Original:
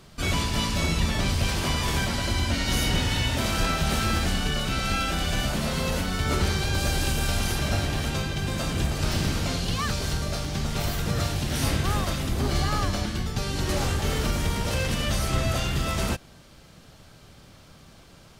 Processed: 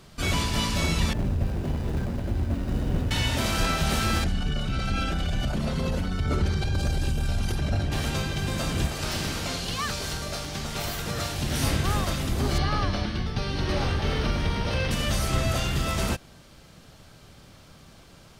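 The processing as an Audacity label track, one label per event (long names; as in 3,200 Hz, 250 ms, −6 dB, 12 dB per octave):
1.130000	3.110000	running median over 41 samples
4.240000	7.920000	spectral envelope exaggerated exponent 1.5
8.870000	11.390000	low-shelf EQ 280 Hz −7.5 dB
12.580000	14.910000	Savitzky-Golay smoothing over 15 samples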